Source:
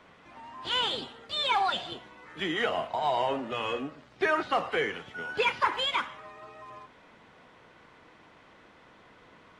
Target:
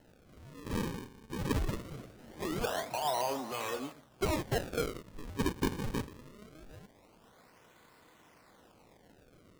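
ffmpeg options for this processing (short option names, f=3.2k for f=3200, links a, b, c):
-filter_complex "[0:a]equalizer=f=5.2k:t=o:w=0.48:g=-9,acrusher=samples=37:mix=1:aa=0.000001:lfo=1:lforange=59.2:lforate=0.22,asettb=1/sr,asplit=3[a][b][c];[a]atrim=end=1.594[d];[b]atrim=start=1.59:end=3.92,asetpts=PTS-STARTPTS,afade=t=in:d=0.004:c=qsin,afade=t=out:st=2.326:d=0.004:c=qsin,asplit=4[e][f][g][h];[f]adelay=303,afreqshift=100,volume=-14.5dB[i];[g]adelay=606,afreqshift=200,volume=-23.1dB[j];[h]adelay=909,afreqshift=300,volume=-31.8dB[k];[e][i][j][k]amix=inputs=4:normalize=0,atrim=end_sample=102753[l];[c]atrim=start=3.916[m];[d][l]acrossfade=d=0.004:c1=hsin:c2=qsin[n];[n][m]acrossfade=d=0.004:c1=qsin:c2=hsin,volume=-5dB"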